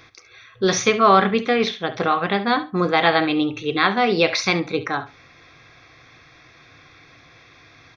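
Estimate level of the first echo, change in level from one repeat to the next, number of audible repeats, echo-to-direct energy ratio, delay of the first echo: −14.5 dB, −16.0 dB, 2, −14.5 dB, 69 ms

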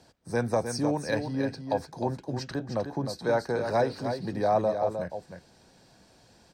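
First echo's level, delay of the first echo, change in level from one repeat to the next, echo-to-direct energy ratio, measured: −7.5 dB, 308 ms, repeats not evenly spaced, −7.5 dB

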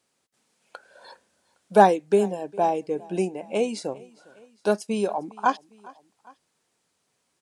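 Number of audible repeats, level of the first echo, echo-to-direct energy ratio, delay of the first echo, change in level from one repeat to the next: 2, −23.5 dB, −22.0 dB, 406 ms, −4.5 dB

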